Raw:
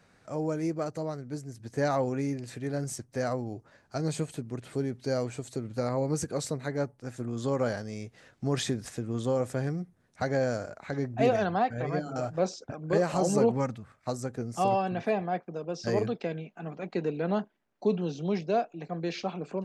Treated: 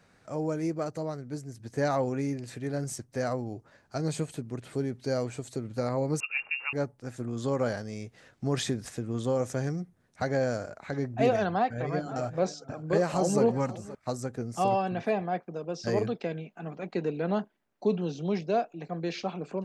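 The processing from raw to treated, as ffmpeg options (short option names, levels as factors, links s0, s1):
-filter_complex "[0:a]asettb=1/sr,asplit=3[s0][s1][s2];[s0]atrim=end=6.204[s3];[s1]atrim=start=6.2:end=6.73,asetpts=PTS-STARTPTS,afade=t=in:d=0.004:c=qsin,afade=t=out:st=0.526:d=0.004:c=qsin,lowpass=f=2500:t=q:w=0.5098,lowpass=f=2500:t=q:w=0.6013,lowpass=f=2500:t=q:w=0.9,lowpass=f=2500:t=q:w=2.563,afreqshift=-2900[s4];[s2]atrim=start=6.726[s5];[s3][s4]acrossfade=d=0.004:c1=hsin:c2=qsin[s6];[s6][s5]acrossfade=d=0.004:c1=qsin:c2=hsin,asettb=1/sr,asplit=3[s7][s8][s9];[s7]atrim=end=9.394[s10];[s8]atrim=start=9.39:end=9.81,asetpts=PTS-STARTPTS,afade=t=in:d=0.004:c=qsin,afade=t=out:st=0.416:d=0.004:c=qsin,equalizer=f=6200:t=o:w=0.37:g=10.5[s11];[s9]atrim=start=9.806[s12];[s10][s11]acrossfade=d=0.004:c1=hsin:c2=qsin[s13];[s13][s12]acrossfade=d=0.004:c1=qsin:c2=hsin,asettb=1/sr,asplit=3[s14][s15][s16];[s14]atrim=end=11.454[s17];[s15]atrim=start=11.45:end=13.95,asetpts=PTS-STARTPTS,afade=t=in:d=0.004:c=qsin,afade=t=out:st=2.496:d=0.004:c=qsin,aecho=1:1:527:0.141,atrim=end_sample=110250[s18];[s16]atrim=start=13.946[s19];[s17][s18]acrossfade=d=0.004:c1=hsin:c2=qsin[s20];[s20][s19]acrossfade=d=0.004:c1=qsin:c2=hsin"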